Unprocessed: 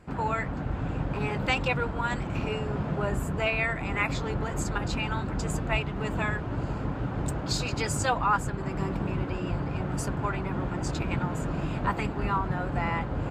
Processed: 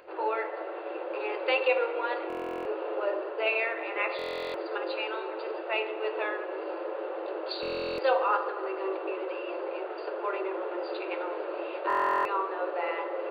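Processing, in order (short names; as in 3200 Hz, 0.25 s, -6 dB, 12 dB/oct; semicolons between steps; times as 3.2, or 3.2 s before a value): octaver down 2 oct, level -2 dB; FFT band-pass 320–4800 Hz; upward compressor, threshold -49 dBFS; small resonant body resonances 540/2700 Hz, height 11 dB, ringing for 30 ms; on a send at -4 dB: reverb RT60 2.1 s, pre-delay 15 ms; on the sum: stuck buffer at 2.28/4.17/7.61/11.88, samples 1024, times 15; gain -4 dB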